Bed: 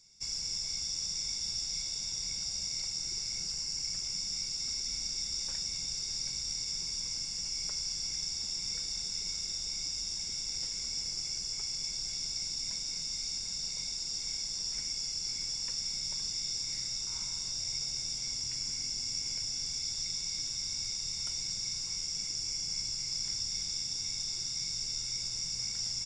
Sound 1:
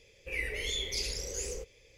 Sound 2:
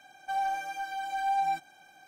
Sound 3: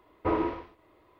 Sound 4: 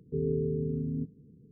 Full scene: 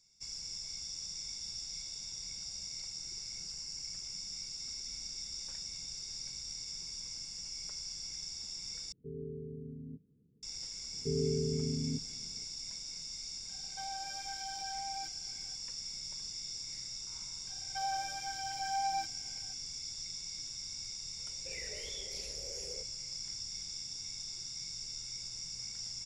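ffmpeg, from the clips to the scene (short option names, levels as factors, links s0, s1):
-filter_complex "[4:a]asplit=2[s0][s1];[2:a]asplit=2[s2][s3];[0:a]volume=0.447[s4];[s2]alimiter=level_in=1.78:limit=0.0631:level=0:latency=1:release=71,volume=0.562[s5];[1:a]equalizer=f=620:t=o:w=0.77:g=11[s6];[s4]asplit=2[s7][s8];[s7]atrim=end=8.924[s9];[s0]atrim=end=1.51,asetpts=PTS-STARTPTS,volume=0.211[s10];[s8]atrim=start=10.426[s11];[s1]atrim=end=1.51,asetpts=PTS-STARTPTS,volume=0.708,afade=t=in:d=0.004:c=hsin,afade=t=out:st=1.506:d=0.004:c=hsin,adelay=10930[s12];[s5]atrim=end=2.07,asetpts=PTS-STARTPTS,volume=0.335,afade=t=in:d=0.004:c=hsin,afade=t=out:st=2.066:d=0.004:c=hsin,adelay=13490[s13];[s3]atrim=end=2.07,asetpts=PTS-STARTPTS,volume=0.473,afade=t=in:d=0.004:c=hsin,afade=t=out:st=2.066:d=0.004:c=hsin,adelay=17470[s14];[s6]atrim=end=1.97,asetpts=PTS-STARTPTS,volume=0.211,afade=t=in:d=0.004:c=hsin,afade=t=out:st=1.966:d=0.004:c=hsin,adelay=21190[s15];[s9][s10]acrossfade=d=0.004:c1=hsin:c2=hsin[s16];[s16][s11]acrossfade=d=0.004:c1=hsin:c2=hsin[s17];[s17][s12][s13][s14][s15]amix=inputs=5:normalize=0"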